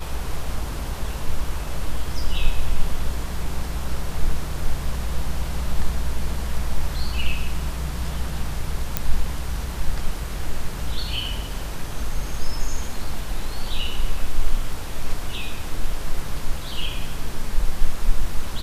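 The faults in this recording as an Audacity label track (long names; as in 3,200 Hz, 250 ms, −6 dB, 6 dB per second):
8.970000	8.970000	click −5 dBFS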